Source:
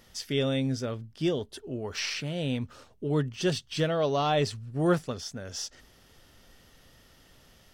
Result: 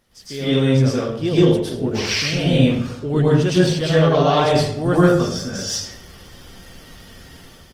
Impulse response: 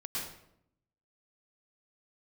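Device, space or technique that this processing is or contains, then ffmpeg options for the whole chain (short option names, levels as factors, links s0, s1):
speakerphone in a meeting room: -filter_complex "[0:a]asettb=1/sr,asplit=3[s0][s1][s2];[s0]atrim=end=1.434[s3];[s1]atrim=start=1.43:end=1.88,asetpts=PTS-STARTPTS,afade=t=in:d=0.004:c=qsin,afade=t=out:st=0.446:d=0.004:c=qsin,highpass=64[s4];[s2]atrim=start=1.876[s5];[s3][s4]acrossfade=d=0.004:c1=hsin:c2=qsin[s6];[s6][s5]acrossfade=d=0.004:c1=qsin:c2=hsin[s7];[1:a]atrim=start_sample=2205[s8];[s7][s8]afir=irnorm=-1:irlink=0,asplit=2[s9][s10];[s10]adelay=230,highpass=300,lowpass=3400,asoftclip=type=hard:threshold=0.112,volume=0.0501[s11];[s9][s11]amix=inputs=2:normalize=0,dynaudnorm=f=210:g=5:m=4.47" -ar 48000 -c:a libopus -b:a 20k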